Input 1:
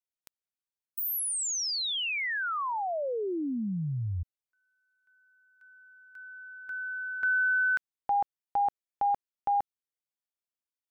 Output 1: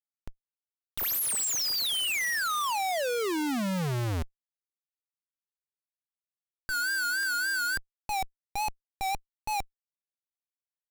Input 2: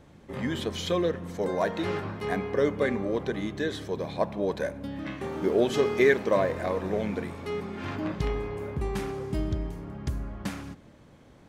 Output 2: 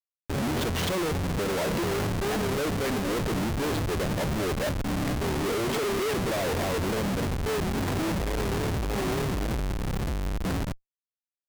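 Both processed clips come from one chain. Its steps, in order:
comparator with hysteresis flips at −35.5 dBFS
pitch vibrato 3.5 Hz 99 cents
brickwall limiter −28.5 dBFS
level +4 dB

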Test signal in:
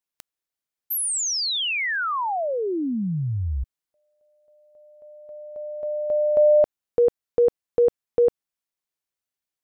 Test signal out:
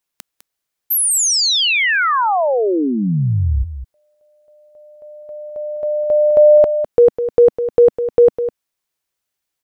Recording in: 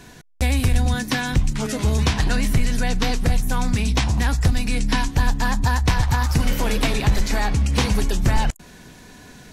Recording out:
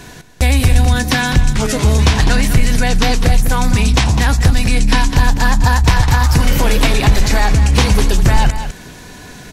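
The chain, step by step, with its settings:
parametric band 230 Hz −3 dB 0.58 octaves
single-tap delay 204 ms −11.5 dB
in parallel at +0.5 dB: brickwall limiter −14.5 dBFS
on the sum: level +3 dB

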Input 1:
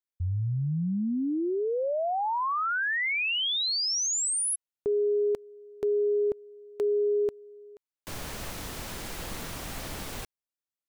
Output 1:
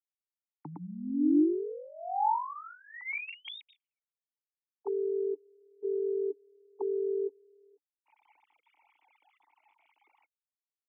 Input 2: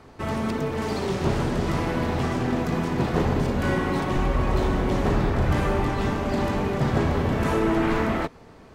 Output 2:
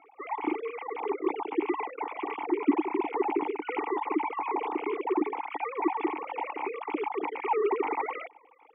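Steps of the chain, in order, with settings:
three sine waves on the formant tracks
formant filter u
level +8 dB

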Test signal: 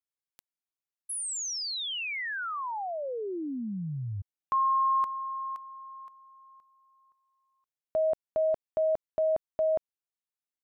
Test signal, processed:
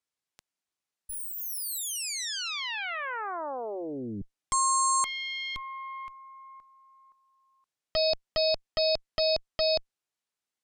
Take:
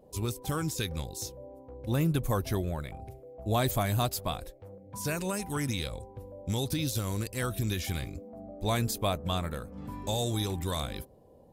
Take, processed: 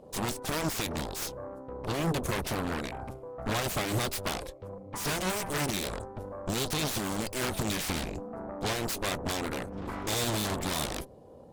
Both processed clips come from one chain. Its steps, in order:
low-pass filter 9,400 Hz 12 dB per octave
low-shelf EQ 68 Hz −7.5 dB
brickwall limiter −23.5 dBFS
harmonic generator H 4 −15 dB, 6 −11 dB, 7 −7 dB, 8 −7 dB, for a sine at −23.5 dBFS

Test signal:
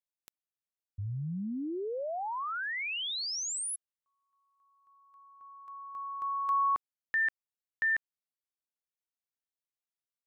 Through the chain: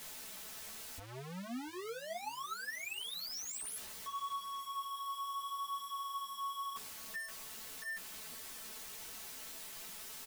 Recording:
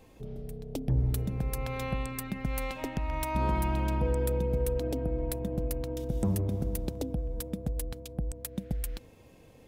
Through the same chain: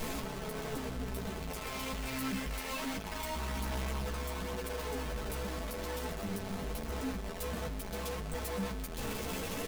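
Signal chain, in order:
sign of each sample alone
comb filter 4.6 ms, depth 52%
feedback echo with a long and a short gap by turns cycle 1,158 ms, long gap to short 1.5 to 1, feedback 34%, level −23.5 dB
multi-voice chorus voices 2, 0.66 Hz, delay 13 ms, depth 2.6 ms
level −4 dB

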